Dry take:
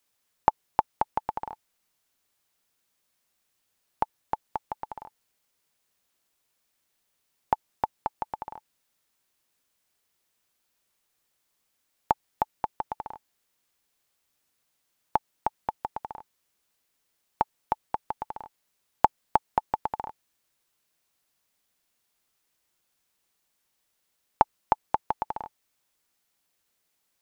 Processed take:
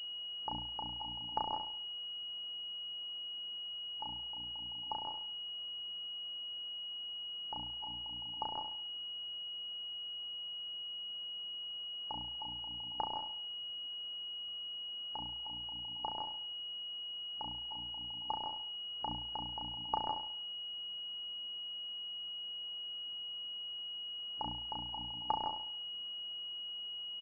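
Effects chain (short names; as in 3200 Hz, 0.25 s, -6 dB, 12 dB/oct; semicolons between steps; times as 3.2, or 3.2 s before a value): notches 60/120/180/240/300 Hz; spectral noise reduction 6 dB; harmonic-percussive split percussive -12 dB; auto swell 0.141 s; doubler 34 ms -3 dB; flutter echo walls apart 11.8 m, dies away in 0.53 s; pulse-width modulation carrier 2900 Hz; gain +17 dB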